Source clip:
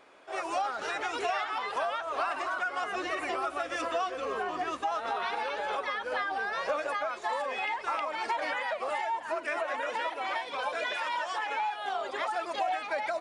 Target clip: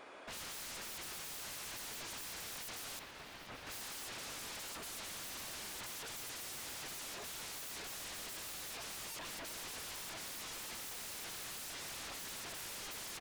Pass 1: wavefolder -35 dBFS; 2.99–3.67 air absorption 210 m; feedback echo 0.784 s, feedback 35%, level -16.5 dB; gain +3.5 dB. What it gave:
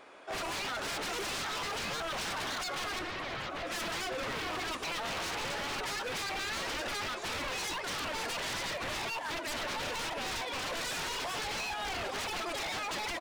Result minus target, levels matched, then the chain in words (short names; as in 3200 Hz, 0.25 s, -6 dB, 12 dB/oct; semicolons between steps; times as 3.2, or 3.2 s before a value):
wavefolder: distortion -32 dB
wavefolder -45 dBFS; 2.99–3.67 air absorption 210 m; feedback echo 0.784 s, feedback 35%, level -16.5 dB; gain +3.5 dB